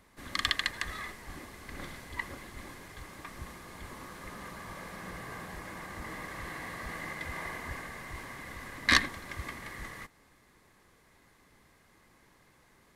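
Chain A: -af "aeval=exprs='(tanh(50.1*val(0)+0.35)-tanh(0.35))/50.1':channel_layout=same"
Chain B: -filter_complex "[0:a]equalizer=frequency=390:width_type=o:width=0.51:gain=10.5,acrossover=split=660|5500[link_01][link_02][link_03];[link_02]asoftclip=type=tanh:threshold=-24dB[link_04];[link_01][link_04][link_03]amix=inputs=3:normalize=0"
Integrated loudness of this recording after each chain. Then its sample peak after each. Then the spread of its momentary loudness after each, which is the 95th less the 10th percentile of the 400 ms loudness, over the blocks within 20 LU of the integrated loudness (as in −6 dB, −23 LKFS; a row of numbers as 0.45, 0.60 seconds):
−43.5, −38.5 LKFS; −31.5, −13.0 dBFS; 8, 11 LU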